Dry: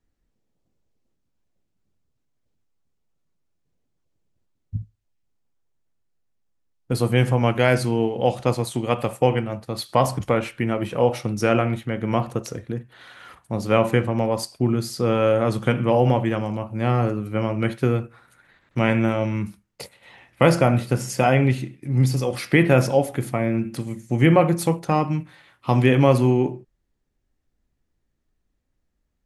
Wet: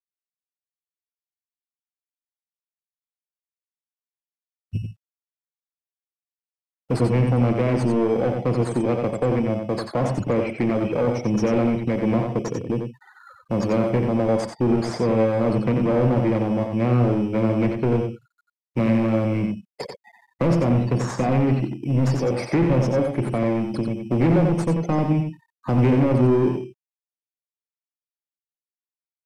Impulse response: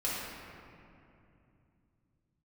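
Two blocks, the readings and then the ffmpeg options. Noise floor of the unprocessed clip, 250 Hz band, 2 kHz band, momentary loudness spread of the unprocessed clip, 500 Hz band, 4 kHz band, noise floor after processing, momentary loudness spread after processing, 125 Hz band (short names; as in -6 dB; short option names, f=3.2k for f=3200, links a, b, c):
-74 dBFS, +2.5 dB, -7.0 dB, 13 LU, -1.0 dB, -7.0 dB, under -85 dBFS, 9 LU, 0.0 dB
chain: -filter_complex "[0:a]afftfilt=real='re*gte(hypot(re,im),0.02)':imag='im*gte(hypot(re,im),0.02)':win_size=1024:overlap=0.75,firequalizer=gain_entry='entry(260,0);entry(1500,-13);entry(2200,2);entry(3400,-13);entry(5100,9);entry(8200,13);entry(12000,-8)':delay=0.05:min_phase=1,acrossover=split=370[a][b];[b]acompressor=threshold=-33dB:ratio=5[c];[a][c]amix=inputs=2:normalize=0,asplit=2[d][e];[e]acrusher=samples=16:mix=1:aa=0.000001,volume=-4dB[f];[d][f]amix=inputs=2:normalize=0,asplit=2[g][h];[h]highpass=f=720:p=1,volume=28dB,asoftclip=type=tanh:threshold=-3dB[i];[g][i]amix=inputs=2:normalize=0,lowpass=f=1k:p=1,volume=-6dB,acrusher=bits=10:mix=0:aa=0.000001,asplit=2[j][k];[k]aecho=0:1:90:0.531[l];[j][l]amix=inputs=2:normalize=0,aresample=32000,aresample=44100,adynamicequalizer=threshold=0.00708:dfrequency=6400:dqfactor=0.7:tfrequency=6400:tqfactor=0.7:attack=5:release=100:ratio=0.375:range=2.5:mode=cutabove:tftype=highshelf,volume=-7.5dB"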